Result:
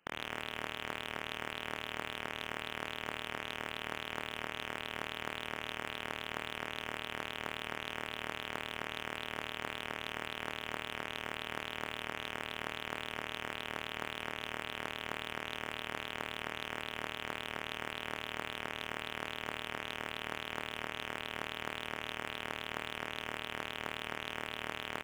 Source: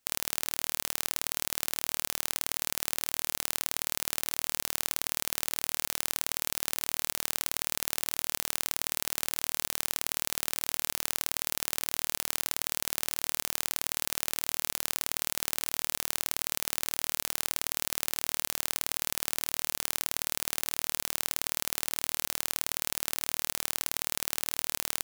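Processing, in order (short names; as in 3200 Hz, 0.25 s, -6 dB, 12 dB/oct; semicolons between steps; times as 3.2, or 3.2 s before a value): inverted band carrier 3000 Hz; in parallel at -6.5 dB: wrapped overs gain 33 dB; on the sum: low shelf 76 Hz -10.5 dB; on a send: feedback echo 68 ms, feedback 59%, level -10 dB; on the sum: limiter -25.5 dBFS, peak gain reduction 7 dB; Doppler distortion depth 0.24 ms; gain +5 dB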